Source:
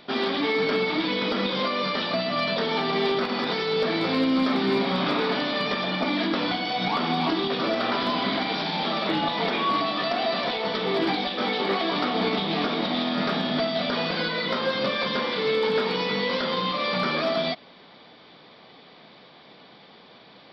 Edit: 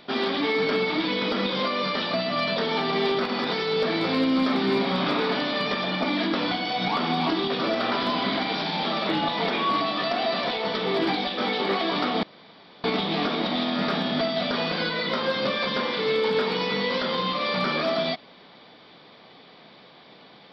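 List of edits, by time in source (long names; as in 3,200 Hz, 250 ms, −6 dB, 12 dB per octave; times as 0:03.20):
0:12.23: splice in room tone 0.61 s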